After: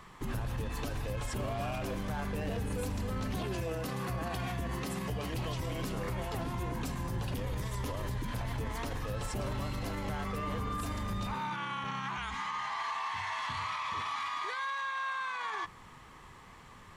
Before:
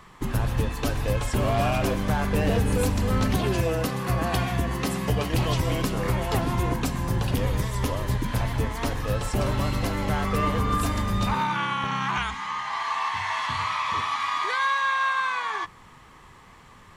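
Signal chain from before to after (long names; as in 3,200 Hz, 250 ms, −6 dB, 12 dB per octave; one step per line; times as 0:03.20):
brickwall limiter −25 dBFS, peak gain reduction 11.5 dB
level −3 dB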